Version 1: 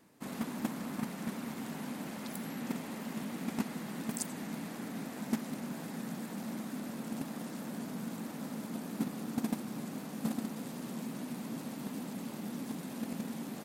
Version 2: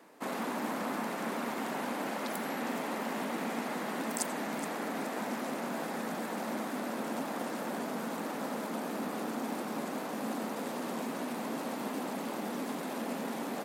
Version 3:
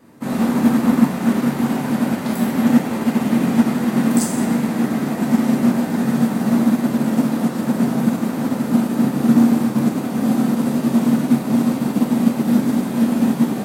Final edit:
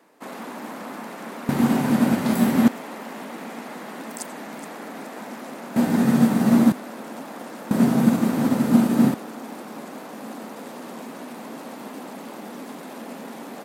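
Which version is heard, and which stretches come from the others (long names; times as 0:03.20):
2
0:01.49–0:02.68: punch in from 3
0:05.76–0:06.72: punch in from 3
0:07.71–0:09.14: punch in from 3
not used: 1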